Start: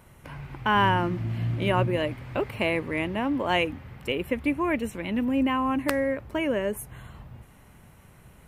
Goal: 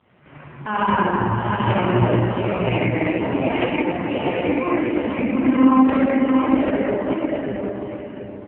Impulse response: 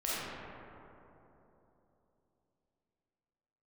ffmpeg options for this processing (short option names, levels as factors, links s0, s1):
-filter_complex "[0:a]aecho=1:1:710|1420|2130|2840:0.631|0.164|0.0427|0.0111[s0];[1:a]atrim=start_sample=2205[s1];[s0][s1]afir=irnorm=-1:irlink=0" -ar 8000 -c:a libopencore_amrnb -b:a 4750